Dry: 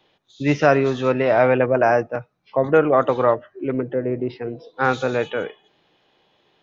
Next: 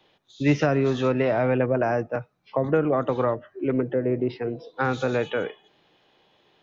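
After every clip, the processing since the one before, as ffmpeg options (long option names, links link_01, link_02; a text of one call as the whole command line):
ffmpeg -i in.wav -filter_complex "[0:a]acrossover=split=310[link_01][link_02];[link_02]acompressor=threshold=-22dB:ratio=6[link_03];[link_01][link_03]amix=inputs=2:normalize=0" out.wav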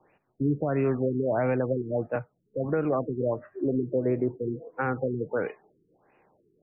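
ffmpeg -i in.wav -af "alimiter=limit=-16dB:level=0:latency=1:release=281,afftfilt=real='re*lt(b*sr/1024,430*pow(2900/430,0.5+0.5*sin(2*PI*1.5*pts/sr)))':imag='im*lt(b*sr/1024,430*pow(2900/430,0.5+0.5*sin(2*PI*1.5*pts/sr)))':win_size=1024:overlap=0.75" out.wav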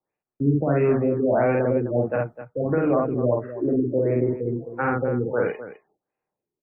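ffmpeg -i in.wav -filter_complex "[0:a]agate=range=-27dB:threshold=-56dB:ratio=16:detection=peak,asplit=2[link_01][link_02];[link_02]aecho=0:1:49.56|256.6:0.891|0.251[link_03];[link_01][link_03]amix=inputs=2:normalize=0,volume=3dB" out.wav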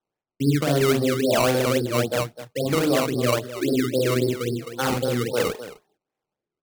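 ffmpeg -i in.wav -af "acrusher=samples=18:mix=1:aa=0.000001:lfo=1:lforange=18:lforate=3.7" out.wav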